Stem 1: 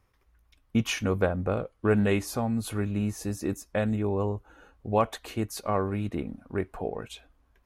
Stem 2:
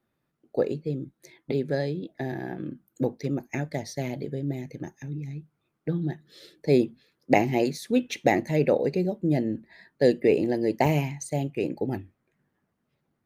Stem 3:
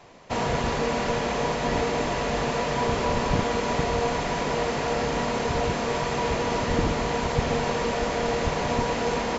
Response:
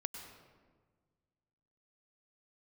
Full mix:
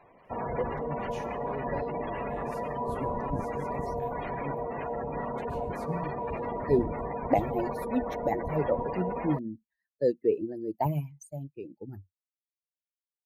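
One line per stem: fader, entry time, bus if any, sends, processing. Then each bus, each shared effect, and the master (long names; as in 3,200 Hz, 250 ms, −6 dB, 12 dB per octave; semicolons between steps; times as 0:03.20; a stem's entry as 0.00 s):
−5.5 dB, 0.25 s, send −14.5 dB, downward compressor 2 to 1, threshold −41 dBFS, peak gain reduction 12.5 dB; automatic ducking −12 dB, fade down 1.75 s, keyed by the second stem
+2.5 dB, 0.00 s, no send, spectral dynamics exaggerated over time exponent 2; flat-topped bell 3,700 Hz −14 dB 2.7 octaves; rotating-speaker cabinet horn 8 Hz
−7.5 dB, 0.00 s, send −8 dB, gate on every frequency bin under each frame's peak −15 dB strong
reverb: on, RT60 1.5 s, pre-delay 92 ms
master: low-shelf EQ 430 Hz −4.5 dB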